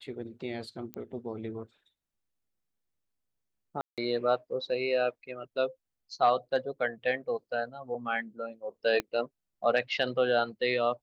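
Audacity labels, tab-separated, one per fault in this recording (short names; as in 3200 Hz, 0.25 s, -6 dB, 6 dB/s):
0.940000	0.940000	pop -23 dBFS
3.810000	3.980000	gap 0.167 s
9.000000	9.000000	pop -16 dBFS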